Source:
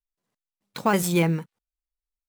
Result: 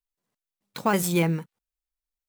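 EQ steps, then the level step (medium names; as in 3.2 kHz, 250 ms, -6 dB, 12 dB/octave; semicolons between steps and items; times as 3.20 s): treble shelf 11 kHz +4 dB; -1.5 dB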